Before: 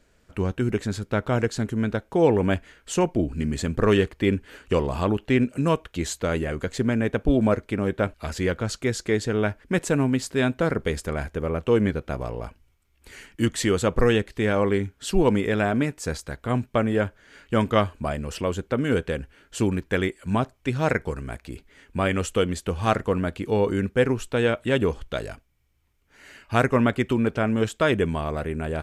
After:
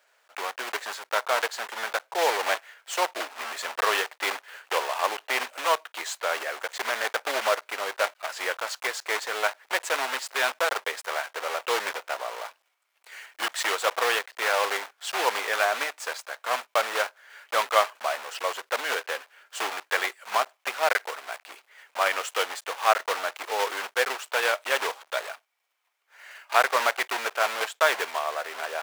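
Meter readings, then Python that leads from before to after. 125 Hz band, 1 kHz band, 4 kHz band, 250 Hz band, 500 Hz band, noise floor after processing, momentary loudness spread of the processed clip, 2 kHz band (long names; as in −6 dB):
below −40 dB, +4.0 dB, +5.0 dB, −25.0 dB, −6.0 dB, −72 dBFS, 10 LU, +4.0 dB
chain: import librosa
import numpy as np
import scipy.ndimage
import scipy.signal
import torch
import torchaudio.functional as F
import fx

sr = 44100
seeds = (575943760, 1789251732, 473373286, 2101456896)

y = fx.block_float(x, sr, bits=3)
y = scipy.signal.sosfilt(scipy.signal.butter(4, 670.0, 'highpass', fs=sr, output='sos'), y)
y = fx.high_shelf(y, sr, hz=4000.0, db=-9.5)
y = y * librosa.db_to_amplitude(4.0)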